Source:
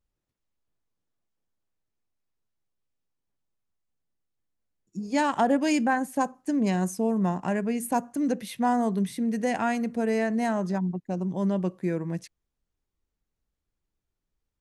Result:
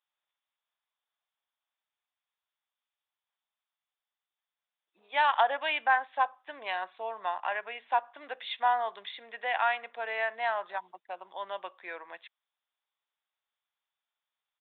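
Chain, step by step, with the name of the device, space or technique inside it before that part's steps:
musical greeting card (downsampling to 8,000 Hz; high-pass filter 770 Hz 24 dB per octave; parametric band 3,500 Hz +8 dB 0.23 octaves)
level +3 dB

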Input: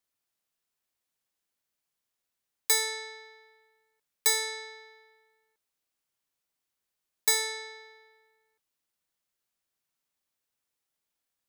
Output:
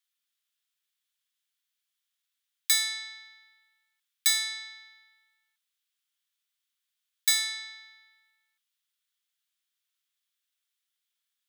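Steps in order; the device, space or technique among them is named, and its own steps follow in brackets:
headphones lying on a table (high-pass filter 1,300 Hz 24 dB per octave; parametric band 3,400 Hz +8 dB 0.45 octaves)

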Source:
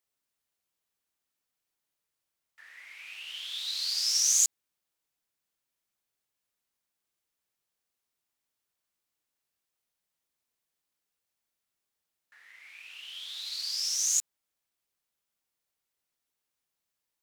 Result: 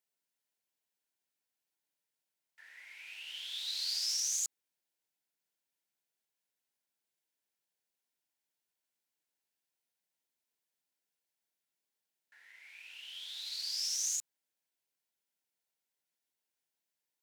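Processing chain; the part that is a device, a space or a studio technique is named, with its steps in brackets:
PA system with an anti-feedback notch (high-pass filter 150 Hz 12 dB per octave; Butterworth band-reject 1,200 Hz, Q 5.1; brickwall limiter −21 dBFS, peak gain reduction 9 dB)
level −4 dB

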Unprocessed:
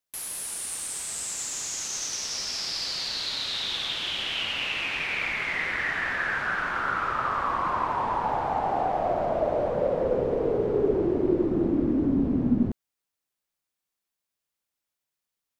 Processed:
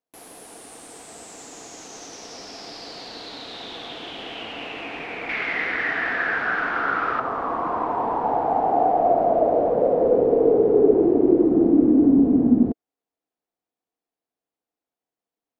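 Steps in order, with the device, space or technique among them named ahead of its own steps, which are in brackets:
0:05.29–0:07.20: flat-topped bell 2,700 Hz +8.5 dB 2.4 octaves
inside a helmet (high-shelf EQ 5,000 Hz −7.5 dB; hollow resonant body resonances 300/450/680 Hz, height 16 dB, ringing for 25 ms)
level −6.5 dB

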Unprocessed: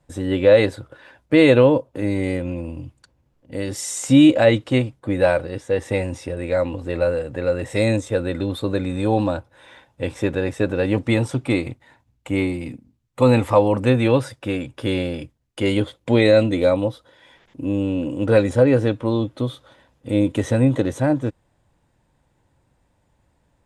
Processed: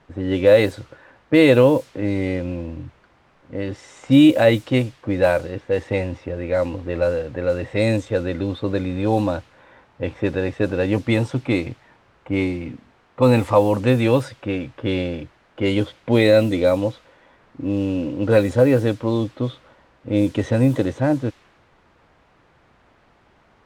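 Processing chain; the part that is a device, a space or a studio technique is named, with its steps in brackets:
cassette deck with a dynamic noise filter (white noise bed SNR 26 dB; low-pass that shuts in the quiet parts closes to 1,300 Hz, open at −11.5 dBFS)

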